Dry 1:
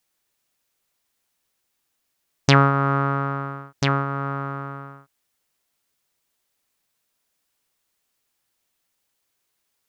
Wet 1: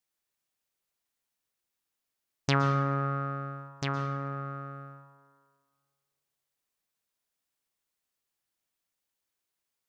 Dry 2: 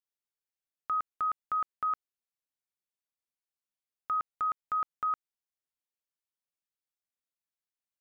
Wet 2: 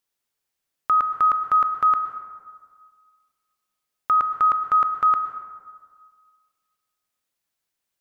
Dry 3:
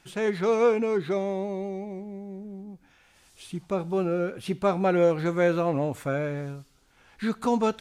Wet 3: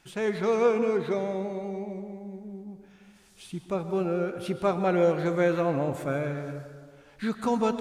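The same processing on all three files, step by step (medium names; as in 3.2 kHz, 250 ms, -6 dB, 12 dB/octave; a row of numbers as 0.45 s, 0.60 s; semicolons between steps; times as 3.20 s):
plate-style reverb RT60 1.7 s, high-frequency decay 0.45×, pre-delay 105 ms, DRR 9 dB; peak normalisation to -12 dBFS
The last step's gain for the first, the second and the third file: -11.0 dB, +12.0 dB, -1.5 dB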